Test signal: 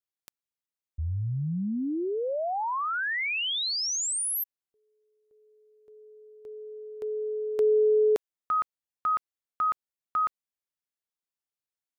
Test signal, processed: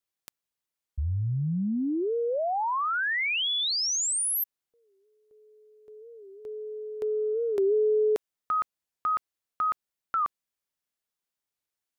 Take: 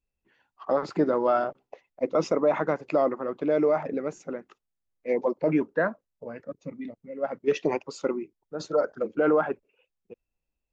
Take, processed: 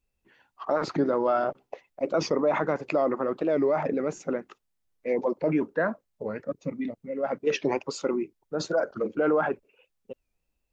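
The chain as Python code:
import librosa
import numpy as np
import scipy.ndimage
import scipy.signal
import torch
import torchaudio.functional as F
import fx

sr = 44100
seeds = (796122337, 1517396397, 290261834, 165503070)

p1 = fx.over_compress(x, sr, threshold_db=-32.0, ratio=-1.0)
p2 = x + (p1 * 10.0 ** (-2.5 / 20.0))
p3 = fx.record_warp(p2, sr, rpm=45.0, depth_cents=160.0)
y = p3 * 10.0 ** (-2.5 / 20.0)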